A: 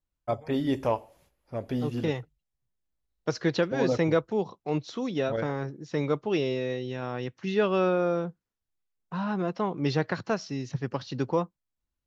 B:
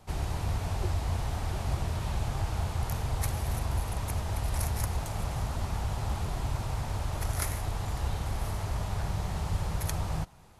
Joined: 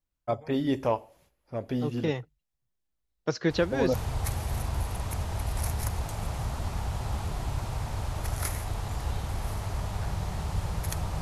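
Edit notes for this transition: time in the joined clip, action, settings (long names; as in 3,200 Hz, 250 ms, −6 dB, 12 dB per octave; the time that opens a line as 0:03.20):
A
0:03.50: mix in B from 0:02.47 0.44 s −9 dB
0:03.94: continue with B from 0:02.91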